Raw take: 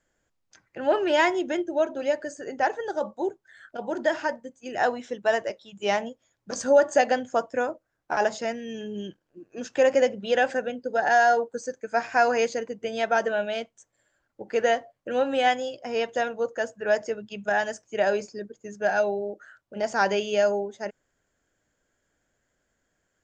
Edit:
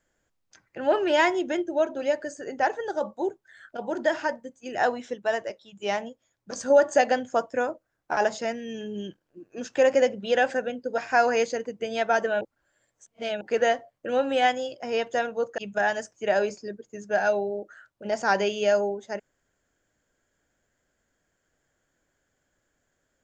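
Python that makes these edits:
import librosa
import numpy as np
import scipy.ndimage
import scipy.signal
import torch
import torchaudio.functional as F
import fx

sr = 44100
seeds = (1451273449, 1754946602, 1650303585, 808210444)

y = fx.edit(x, sr, fx.clip_gain(start_s=5.14, length_s=1.56, db=-3.0),
    fx.cut(start_s=10.98, length_s=1.02),
    fx.reverse_span(start_s=13.43, length_s=1.0),
    fx.cut(start_s=16.6, length_s=0.69), tone=tone)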